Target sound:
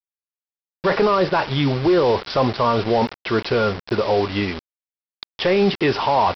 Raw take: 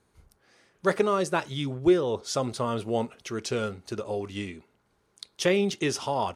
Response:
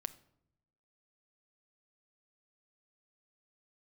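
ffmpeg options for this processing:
-filter_complex "[0:a]equalizer=f=1k:w=0.5:g=13.5,bandreject=f=1.3k:w=9.5,acrossover=split=4000[a][b];[a]acontrast=47[c];[c][b]amix=inputs=2:normalize=0,lowshelf=f=170:g=8,alimiter=limit=-10dB:level=0:latency=1:release=12,aresample=11025,acrusher=bits=4:mix=0:aa=0.000001,aresample=44100"

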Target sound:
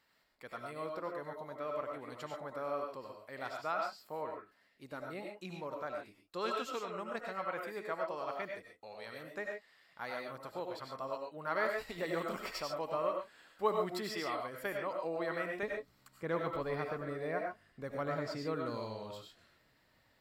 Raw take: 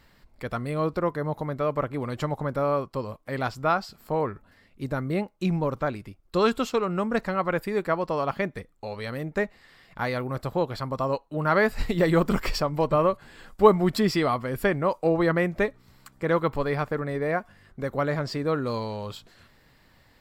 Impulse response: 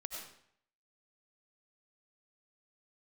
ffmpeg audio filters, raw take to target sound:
-filter_complex "[0:a]asetnsamples=n=441:p=0,asendcmd='15.63 highpass f 100',highpass=f=590:p=1[a];[1:a]atrim=start_sample=2205,atrim=end_sample=6615[b];[a][b]afir=irnorm=-1:irlink=0,volume=-8dB"

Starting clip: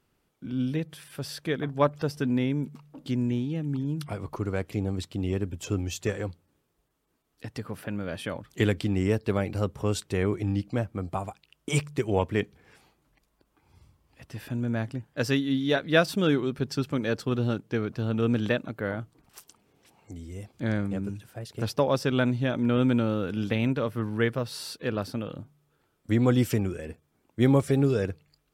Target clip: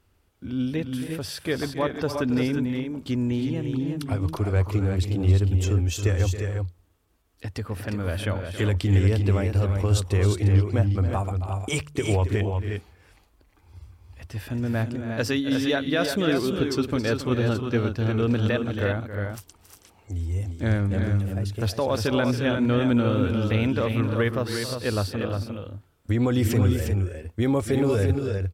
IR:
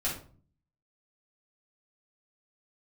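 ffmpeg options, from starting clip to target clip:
-af "lowshelf=f=110:t=q:w=3:g=6.5,alimiter=limit=-18.5dB:level=0:latency=1:release=46,aecho=1:1:274|323|354:0.251|0.251|0.501,volume=3.5dB"

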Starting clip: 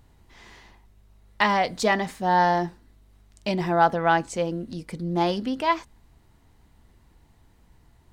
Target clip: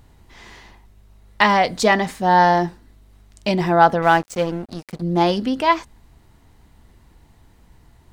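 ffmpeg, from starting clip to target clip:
-filter_complex "[0:a]asettb=1/sr,asplit=3[a][b][c];[a]atrim=end=4.024[d];[b]atrim=start=4.02:end=5.02,asetpts=PTS-STARTPTS,afade=t=in:d=0.004:c=qsin,afade=t=out:st=0.996:d=0.004:c=qsin,aeval=exprs='sgn(val(0))*max(abs(val(0))-0.0112,0)':c=same[e];[c]atrim=start=5.016[f];[d][e]acrossfade=d=0.004:c1=hsin:c2=qsin[g];[g][f]acrossfade=d=0.004:c1=qsin:c2=hsin,volume=6dB"

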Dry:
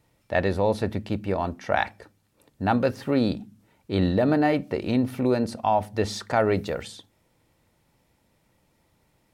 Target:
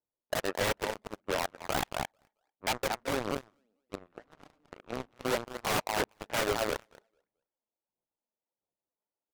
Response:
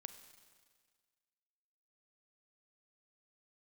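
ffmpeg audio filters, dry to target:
-filter_complex "[0:a]highpass=520,asplit=3[a][b][c];[a]afade=t=out:st=3.94:d=0.02[d];[b]acompressor=threshold=-34dB:ratio=20,afade=t=in:st=3.94:d=0.02,afade=t=out:st=4.75:d=0.02[e];[c]afade=t=in:st=4.75:d=0.02[f];[d][e][f]amix=inputs=3:normalize=0,lowpass=1.8k,acrusher=samples=16:mix=1:aa=0.000001:lfo=1:lforange=25.6:lforate=1.4,adynamicsmooth=sensitivity=5.5:basefreq=1.2k,asplit=2[g][h];[h]aecho=0:1:222|444|666:0.447|0.107|0.0257[i];[g][i]amix=inputs=2:normalize=0,aphaser=in_gain=1:out_gain=1:delay=4.8:decay=0.39:speed=1.5:type=sinusoidal,aeval=exprs='0.0794*(abs(mod(val(0)/0.0794+3,4)-2)-1)':c=same,aeval=exprs='0.0794*(cos(1*acos(clip(val(0)/0.0794,-1,1)))-cos(1*PI/2))+0.0282*(cos(3*acos(clip(val(0)/0.0794,-1,1)))-cos(3*PI/2))':c=same"

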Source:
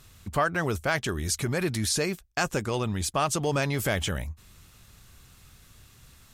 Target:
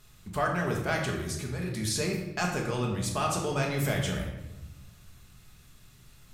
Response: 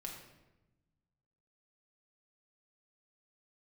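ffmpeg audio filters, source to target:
-filter_complex "[0:a]asettb=1/sr,asplit=3[a][b][c];[a]atrim=end=1.234[d];[b]atrim=start=1.23:end=1.77,asetpts=PTS-STARTPTS,afade=t=in:d=0.004:c=qsin,afade=t=out:st=0.536:d=0.004:c=qsin,acompressor=threshold=-30dB:ratio=6[e];[c]atrim=start=1.766[f];[d][e]acrossfade=d=0.004:c1=hsin:c2=qsin[g];[g][f]acrossfade=d=0.004:c1=qsin:c2=hsin[h];[1:a]atrim=start_sample=2205[i];[h][i]afir=irnorm=-1:irlink=0"

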